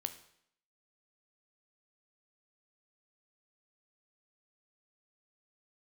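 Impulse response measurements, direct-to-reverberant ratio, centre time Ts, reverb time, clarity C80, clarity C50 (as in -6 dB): 9.0 dB, 8 ms, 0.70 s, 16.0 dB, 13.0 dB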